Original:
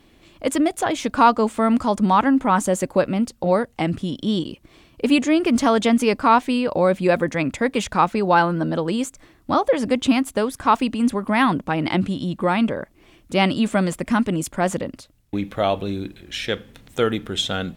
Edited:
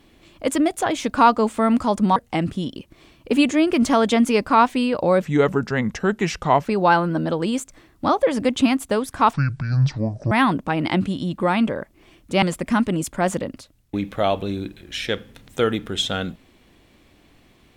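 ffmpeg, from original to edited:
-filter_complex "[0:a]asplit=8[a][b][c][d][e][f][g][h];[a]atrim=end=2.162[i];[b]atrim=start=3.618:end=4.222[j];[c]atrim=start=4.488:end=6.954[k];[d]atrim=start=6.95:end=8.11,asetpts=PTS-STARTPTS,asetrate=35721,aresample=44100[l];[e]atrim=start=8.106:end=10.794[m];[f]atrim=start=10.79:end=11.32,asetpts=PTS-STARTPTS,asetrate=23814,aresample=44100,atrim=end_sample=43283,asetpts=PTS-STARTPTS[n];[g]atrim=start=11.316:end=13.432[o];[h]atrim=start=13.818[p];[i][j]acrossfade=d=0.004:c1=hsin:c2=hsin[q];[q][k]acrossfade=d=0.004:c1=hsin:c2=hsin[r];[r][l]acrossfade=d=0.004:c1=hsin:c2=hsin[s];[s][m]acrossfade=d=0.004:c1=hsin:c2=hsin[t];[t][n]acrossfade=d=0.004:c1=hsin:c2=hsin[u];[u][o]acrossfade=d=0.004:c1=hsin:c2=hsin[v];[v][p]acrossfade=d=0.004:c1=hsin:c2=hsin"

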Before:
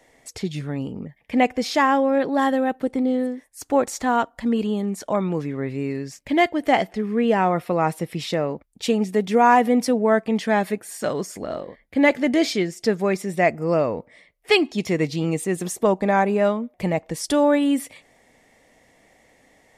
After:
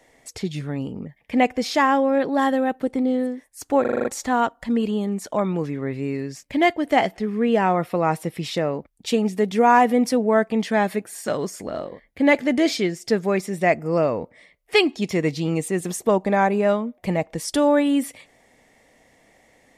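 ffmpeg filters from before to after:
-filter_complex "[0:a]asplit=7[a][b][c][d][e][f][g];[a]atrim=end=3.852[h];[b]atrim=start=3.808:end=3.852[i];[c]atrim=start=3.808:end=3.852[j];[d]atrim=start=3.808:end=3.852[k];[e]atrim=start=3.808:end=3.852[l];[f]atrim=start=3.808:end=3.852[m];[g]atrim=start=3.808[n];[h][i]acrossfade=d=0.004:c1=hsin:c2=hsin[o];[o][j]acrossfade=d=0.004:c1=hsin:c2=hsin[p];[p][k]acrossfade=d=0.004:c1=hsin:c2=hsin[q];[q][l]acrossfade=d=0.004:c1=hsin:c2=hsin[r];[r][m]acrossfade=d=0.004:c1=hsin:c2=hsin[s];[s][n]acrossfade=d=0.004:c1=hsin:c2=hsin"

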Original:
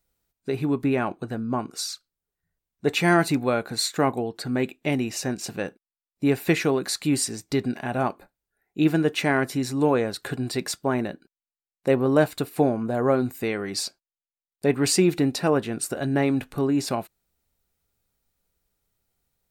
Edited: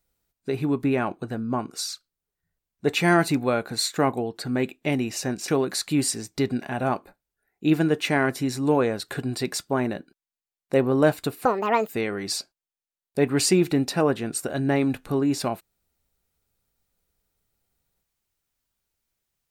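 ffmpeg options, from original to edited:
-filter_complex "[0:a]asplit=4[a][b][c][d];[a]atrim=end=5.482[e];[b]atrim=start=6.618:end=12.594[f];[c]atrim=start=12.59:end=13.36,asetpts=PTS-STARTPTS,asetrate=76734,aresample=44100[g];[d]atrim=start=13.356[h];[e][f]acrossfade=d=0.004:c1=hsin:c2=hsin[i];[i][g]acrossfade=d=0.004:c1=hsin:c2=hsin[j];[j][h]acrossfade=d=0.004:c1=hsin:c2=hsin"

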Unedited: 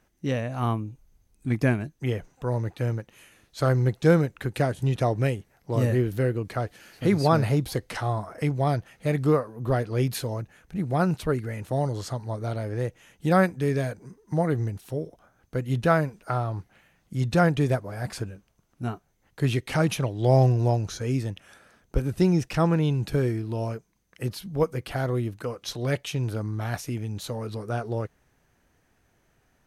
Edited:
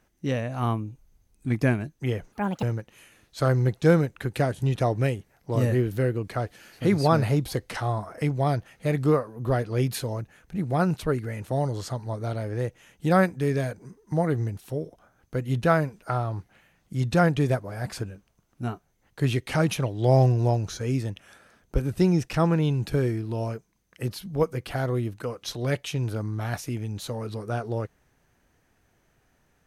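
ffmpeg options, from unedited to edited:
-filter_complex "[0:a]asplit=3[a][b][c];[a]atrim=end=2.324[d];[b]atrim=start=2.32:end=2.83,asetpts=PTS-STARTPTS,asetrate=73206,aresample=44100[e];[c]atrim=start=2.826[f];[d][e]acrossfade=d=0.004:c1=hsin:c2=hsin[g];[g][f]acrossfade=d=0.004:c1=hsin:c2=hsin"

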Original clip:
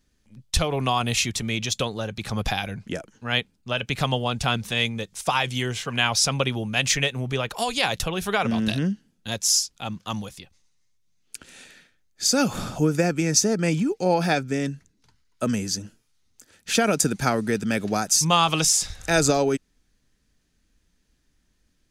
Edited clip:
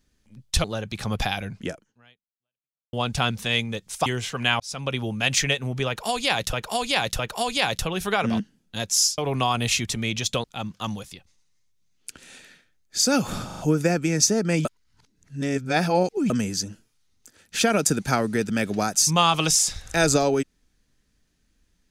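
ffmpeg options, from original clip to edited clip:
-filter_complex "[0:a]asplit=15[a][b][c][d][e][f][g][h][i][j][k][l][m][n][o];[a]atrim=end=0.642[p];[b]atrim=start=1.898:end=4.19,asetpts=PTS-STARTPTS,afade=t=out:st=1.052:d=1.24:c=exp[q];[c]atrim=start=4.19:end=5.322,asetpts=PTS-STARTPTS,afade=t=in:d=0.004:c=hsin[r];[d]atrim=start=5.588:end=6.13,asetpts=PTS-STARTPTS,afade=t=out:st=0.538:d=0.004:c=hsin[s];[e]atrim=start=6.13:end=8.062,asetpts=PTS-STARTPTS,afade=t=in:d=0.46[t];[f]atrim=start=7.398:end=8.062[u];[g]atrim=start=7.398:end=8.612[v];[h]atrim=start=8.918:end=9.702[w];[i]atrim=start=0.638:end=1.902[x];[j]atrim=start=9.698:end=12.762[y];[k]atrim=start=12.718:end=12.762[z];[l]atrim=start=12.718:end=12.762[aa];[m]atrim=start=12.718:end=13.792[ab];[n]atrim=start=13.788:end=15.442,asetpts=PTS-STARTPTS,areverse[ac];[o]atrim=start=15.438[ad];[q][r]concat=n=2:v=0:a=1[ae];[p][ae]acrossfade=d=0.004:c1=hsin:c2=hsin[af];[s][t]concat=n=2:v=0:a=1[ag];[af][ag]acrossfade=d=0.004:c1=hsin:c2=hsin[ah];[ah][u]acrossfade=d=0.004:c1=hsin:c2=hsin[ai];[ai][v]acrossfade=d=0.004:c1=hsin:c2=hsin[aj];[aj][w]acrossfade=d=0.004:c1=hsin:c2=hsin[ak];[ak][x]acrossfade=d=0.004:c1=hsin:c2=hsin[al];[al][y]acrossfade=d=0.004:c1=hsin:c2=hsin[am];[am][z]acrossfade=d=0.004:c1=hsin:c2=hsin[an];[an][aa]acrossfade=d=0.004:c1=hsin:c2=hsin[ao];[ao][ab]acrossfade=d=0.004:c1=hsin:c2=hsin[ap];[ap][ac]acrossfade=d=0.004:c1=hsin:c2=hsin[aq];[aq][ad]acrossfade=d=0.004:c1=hsin:c2=hsin"

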